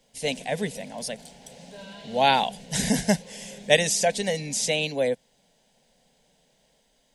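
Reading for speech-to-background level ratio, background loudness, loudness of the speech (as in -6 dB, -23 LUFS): 20.0 dB, -45.0 LUFS, -25.0 LUFS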